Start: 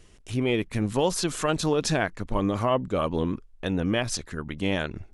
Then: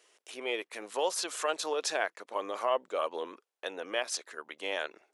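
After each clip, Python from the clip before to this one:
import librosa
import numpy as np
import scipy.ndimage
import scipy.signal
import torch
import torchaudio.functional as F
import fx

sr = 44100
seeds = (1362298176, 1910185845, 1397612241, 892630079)

y = scipy.signal.sosfilt(scipy.signal.butter(4, 460.0, 'highpass', fs=sr, output='sos'), x)
y = F.gain(torch.from_numpy(y), -4.0).numpy()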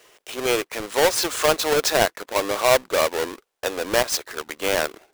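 y = fx.halfwave_hold(x, sr)
y = F.gain(torch.from_numpy(y), 8.0).numpy()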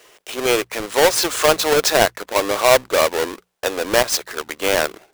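y = fx.hum_notches(x, sr, base_hz=60, count=3)
y = F.gain(torch.from_numpy(y), 4.0).numpy()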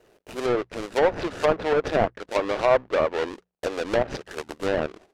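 y = scipy.signal.medfilt(x, 41)
y = fx.env_lowpass_down(y, sr, base_hz=1600.0, full_db=-12.5)
y = F.gain(torch.from_numpy(y), -5.0).numpy()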